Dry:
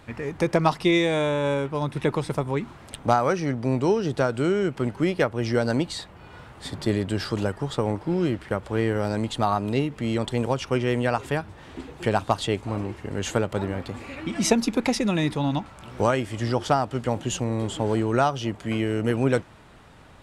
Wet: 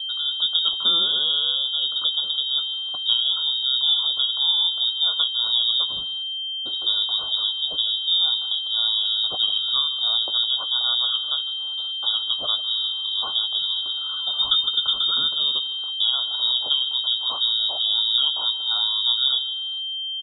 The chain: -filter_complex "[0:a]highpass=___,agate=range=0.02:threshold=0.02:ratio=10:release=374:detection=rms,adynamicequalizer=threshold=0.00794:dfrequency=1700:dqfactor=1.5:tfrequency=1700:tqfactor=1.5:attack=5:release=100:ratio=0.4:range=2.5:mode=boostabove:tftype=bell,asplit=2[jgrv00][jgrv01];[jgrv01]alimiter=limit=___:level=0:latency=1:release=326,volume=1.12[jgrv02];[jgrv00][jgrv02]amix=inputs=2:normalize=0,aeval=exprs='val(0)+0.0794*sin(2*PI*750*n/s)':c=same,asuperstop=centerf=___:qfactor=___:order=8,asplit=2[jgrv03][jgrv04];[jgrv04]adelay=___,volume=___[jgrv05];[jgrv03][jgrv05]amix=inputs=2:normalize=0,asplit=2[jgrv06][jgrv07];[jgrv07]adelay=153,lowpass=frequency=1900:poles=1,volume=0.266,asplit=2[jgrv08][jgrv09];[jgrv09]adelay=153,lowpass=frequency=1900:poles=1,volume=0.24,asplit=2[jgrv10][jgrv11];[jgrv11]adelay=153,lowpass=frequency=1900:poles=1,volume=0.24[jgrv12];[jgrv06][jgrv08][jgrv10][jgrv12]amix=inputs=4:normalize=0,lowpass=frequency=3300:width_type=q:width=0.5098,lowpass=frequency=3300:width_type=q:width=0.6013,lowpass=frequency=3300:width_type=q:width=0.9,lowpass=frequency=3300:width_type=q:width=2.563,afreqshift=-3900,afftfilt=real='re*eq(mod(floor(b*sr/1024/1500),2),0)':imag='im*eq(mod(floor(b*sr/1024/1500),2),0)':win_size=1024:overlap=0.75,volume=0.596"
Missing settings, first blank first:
65, 0.168, 1200, 1.7, 17, 0.266